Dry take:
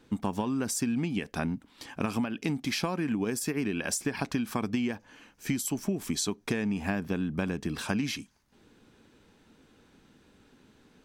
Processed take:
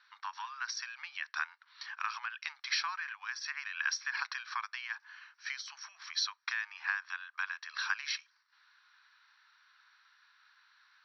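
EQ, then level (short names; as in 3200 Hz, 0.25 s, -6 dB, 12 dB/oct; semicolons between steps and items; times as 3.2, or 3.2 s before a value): steep high-pass 1000 Hz 48 dB/oct; rippled Chebyshev low-pass 5800 Hz, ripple 9 dB; +5.5 dB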